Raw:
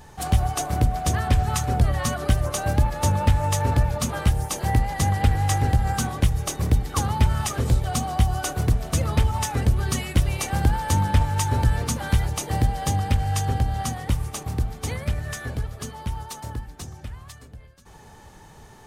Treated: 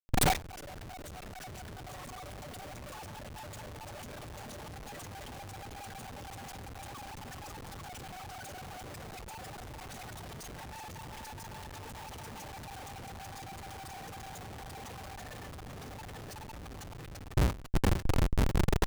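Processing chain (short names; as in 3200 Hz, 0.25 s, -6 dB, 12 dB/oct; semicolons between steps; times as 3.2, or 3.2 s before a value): random spectral dropouts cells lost 51%; HPF 97 Hz 6 dB/oct; AM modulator 22 Hz, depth 95%; reverb removal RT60 0.63 s; tube stage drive 23 dB, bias 0.6; on a send: echo with dull and thin repeats by turns 0.419 s, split 1000 Hz, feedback 77%, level -5.5 dB; on the sum: dynamic EQ 710 Hz, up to +5 dB, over -52 dBFS, Q 1.8; in parallel at +1.5 dB: limiter -23.5 dBFS, peak gain reduction 7.5 dB; on the sum: Schmitt trigger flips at -41.5 dBFS; gate with hold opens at -24 dBFS; gain +5.5 dB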